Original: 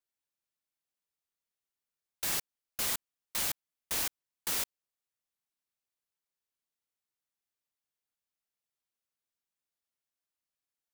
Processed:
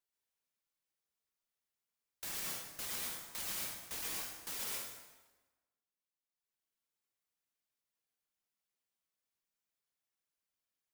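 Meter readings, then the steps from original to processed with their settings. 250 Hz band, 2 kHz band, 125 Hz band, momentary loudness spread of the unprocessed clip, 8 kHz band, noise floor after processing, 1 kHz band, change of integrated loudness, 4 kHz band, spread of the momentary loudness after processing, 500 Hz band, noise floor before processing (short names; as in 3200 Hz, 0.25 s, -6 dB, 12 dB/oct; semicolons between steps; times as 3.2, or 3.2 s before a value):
-5.0 dB, -5.5 dB, -5.5 dB, 7 LU, -6.0 dB, under -85 dBFS, -5.5 dB, -6.0 dB, -6.0 dB, 8 LU, -5.5 dB, under -85 dBFS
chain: reverb removal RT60 1.7 s; limiter -31 dBFS, peak gain reduction 10 dB; plate-style reverb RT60 1.2 s, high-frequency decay 0.8×, pre-delay 0.105 s, DRR -3.5 dB; gain -1.5 dB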